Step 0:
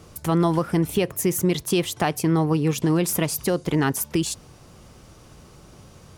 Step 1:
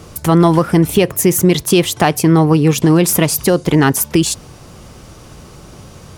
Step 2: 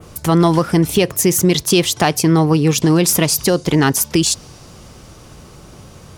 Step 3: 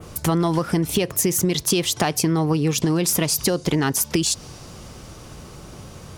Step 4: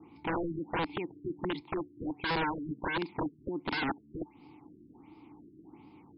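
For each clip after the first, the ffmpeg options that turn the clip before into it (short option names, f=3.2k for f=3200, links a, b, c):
-af "acontrast=45,volume=4.5dB"
-af "adynamicequalizer=threshold=0.0178:dfrequency=5200:dqfactor=1:tfrequency=5200:tqfactor=1:attack=5:release=100:ratio=0.375:range=3.5:mode=boostabove:tftype=bell,volume=-2.5dB"
-af "acompressor=threshold=-17dB:ratio=6"
-filter_complex "[0:a]asplit=3[a][b][c];[a]bandpass=f=300:t=q:w=8,volume=0dB[d];[b]bandpass=f=870:t=q:w=8,volume=-6dB[e];[c]bandpass=f=2.24k:t=q:w=8,volume=-9dB[f];[d][e][f]amix=inputs=3:normalize=0,aeval=exprs='(mod(20*val(0)+1,2)-1)/20':c=same,afftfilt=real='re*lt(b*sr/1024,400*pow(5400/400,0.5+0.5*sin(2*PI*1.4*pts/sr)))':imag='im*lt(b*sr/1024,400*pow(5400/400,0.5+0.5*sin(2*PI*1.4*pts/sr)))':win_size=1024:overlap=0.75"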